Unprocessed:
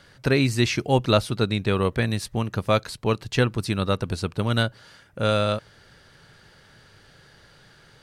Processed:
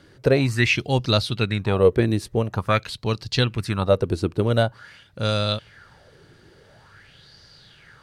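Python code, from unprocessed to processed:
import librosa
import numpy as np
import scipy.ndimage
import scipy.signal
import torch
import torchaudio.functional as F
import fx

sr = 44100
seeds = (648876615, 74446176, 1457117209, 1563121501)

y = fx.peak_eq(x, sr, hz=80.0, db=6.0, octaves=2.3)
y = fx.bell_lfo(y, sr, hz=0.47, low_hz=320.0, high_hz=5000.0, db=15)
y = F.gain(torch.from_numpy(y), -3.5).numpy()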